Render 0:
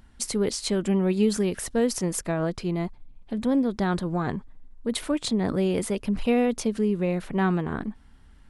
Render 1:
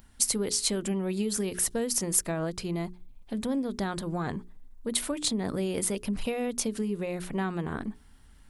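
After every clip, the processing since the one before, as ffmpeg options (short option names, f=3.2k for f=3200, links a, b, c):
-af "acompressor=threshold=-23dB:ratio=6,aemphasis=mode=production:type=50kf,bandreject=f=60:t=h:w=6,bandreject=f=120:t=h:w=6,bandreject=f=180:t=h:w=6,bandreject=f=240:t=h:w=6,bandreject=f=300:t=h:w=6,bandreject=f=360:t=h:w=6,bandreject=f=420:t=h:w=6,volume=-2.5dB"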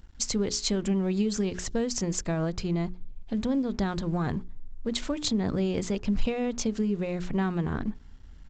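-af "lowshelf=f=160:g=11,aresample=16000,aeval=exprs='sgn(val(0))*max(abs(val(0))-0.00188,0)':c=same,aresample=44100"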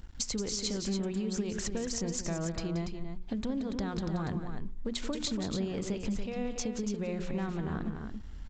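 -filter_complex "[0:a]acompressor=threshold=-35dB:ratio=6,asplit=2[a][b];[b]aecho=0:1:177.8|285.7:0.316|0.447[c];[a][c]amix=inputs=2:normalize=0,volume=3dB"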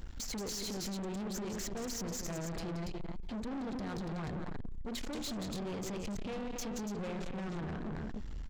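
-af "alimiter=level_in=5.5dB:limit=-24dB:level=0:latency=1:release=27,volume=-5.5dB,aeval=exprs='(tanh(158*val(0)+0.2)-tanh(0.2))/158':c=same,volume=7dB"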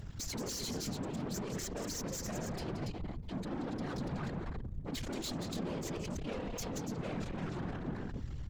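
-af "afftfilt=real='hypot(re,im)*cos(2*PI*random(0))':imag='hypot(re,im)*sin(2*PI*random(1))':win_size=512:overlap=0.75,volume=6dB"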